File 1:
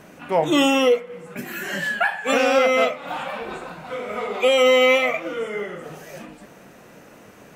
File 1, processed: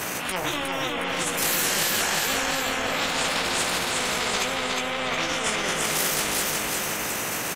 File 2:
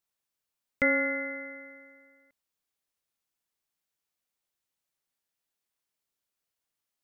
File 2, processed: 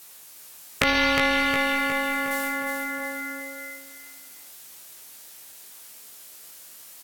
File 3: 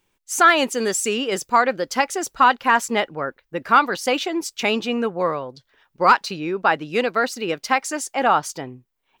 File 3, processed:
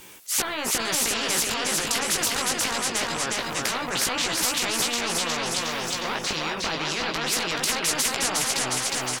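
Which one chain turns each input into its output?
high-pass filter 180 Hz 6 dB per octave
treble cut that deepens with the level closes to 730 Hz, closed at −13.5 dBFS
high-shelf EQ 6,900 Hz +11 dB
transient designer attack −11 dB, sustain +11 dB
brickwall limiter −16.5 dBFS
chorus effect 0.24 Hz, delay 16 ms, depth 3.1 ms
repeating echo 361 ms, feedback 48%, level −5.5 dB
every bin compressed towards the loudest bin 4 to 1
loudness normalisation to −24 LKFS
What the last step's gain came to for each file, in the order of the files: +3.5, +16.0, +8.5 decibels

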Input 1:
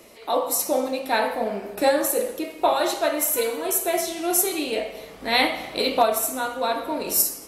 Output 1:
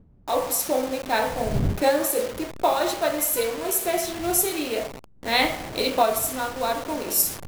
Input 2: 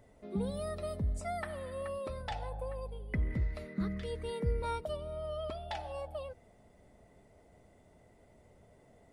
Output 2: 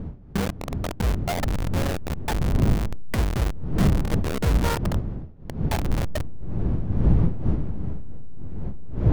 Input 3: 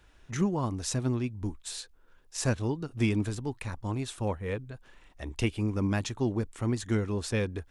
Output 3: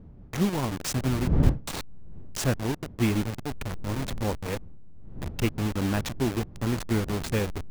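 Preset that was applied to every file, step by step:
hold until the input has moved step −29 dBFS
wind on the microphone 140 Hz −36 dBFS
normalise the peak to −6 dBFS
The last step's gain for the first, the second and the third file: −1.0, +10.5, +3.0 decibels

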